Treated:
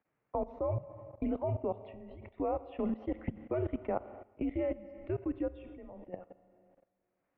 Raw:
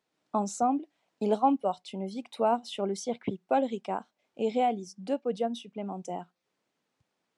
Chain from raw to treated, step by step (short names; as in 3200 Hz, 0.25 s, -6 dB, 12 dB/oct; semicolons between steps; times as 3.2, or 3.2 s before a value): mistuned SSB -170 Hz 280–2500 Hz; Schroeder reverb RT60 1.8 s, combs from 32 ms, DRR 11.5 dB; level quantiser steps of 17 dB; gain +2.5 dB